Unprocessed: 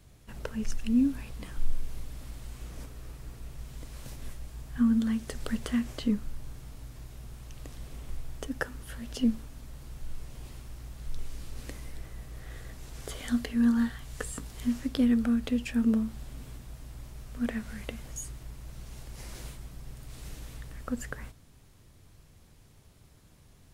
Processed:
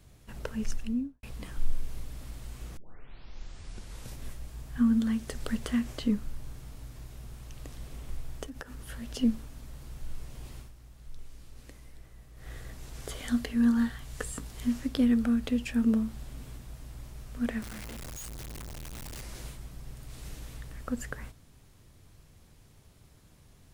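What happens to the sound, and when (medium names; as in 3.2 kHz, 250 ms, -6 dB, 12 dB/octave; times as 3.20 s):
0.68–1.23 s: studio fade out
2.77 s: tape start 1.38 s
8.43–8.86 s: compression 12:1, threshold -37 dBFS
10.60–12.48 s: dip -9 dB, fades 0.12 s
17.62–19.22 s: one-bit comparator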